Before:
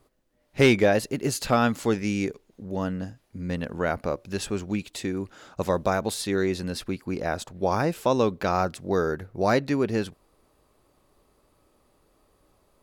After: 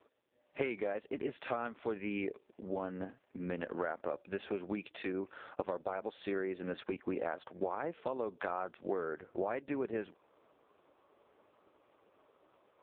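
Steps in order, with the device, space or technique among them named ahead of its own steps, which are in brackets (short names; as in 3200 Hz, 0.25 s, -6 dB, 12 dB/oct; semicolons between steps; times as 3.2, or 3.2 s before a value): voicemail (BPF 340–2900 Hz; compressor 10:1, threshold -35 dBFS, peak gain reduction 19.5 dB; gain +3 dB; AMR-NB 4.75 kbps 8000 Hz)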